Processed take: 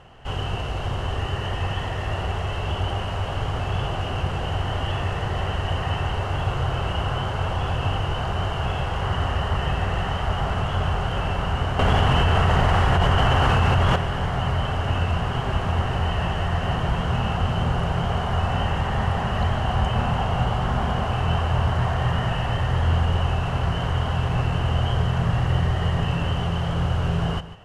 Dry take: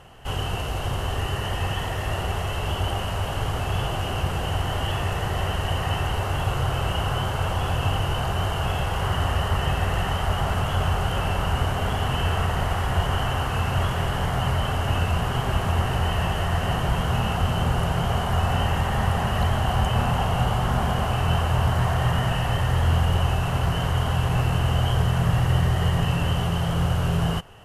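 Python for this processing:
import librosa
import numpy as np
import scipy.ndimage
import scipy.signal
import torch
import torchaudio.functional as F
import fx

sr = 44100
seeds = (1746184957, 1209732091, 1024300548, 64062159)

y = fx.air_absorb(x, sr, metres=82.0)
y = y + 10.0 ** (-14.5 / 20.0) * np.pad(y, (int(147 * sr / 1000.0), 0))[:len(y)]
y = fx.env_flatten(y, sr, amount_pct=100, at=(11.79, 13.96))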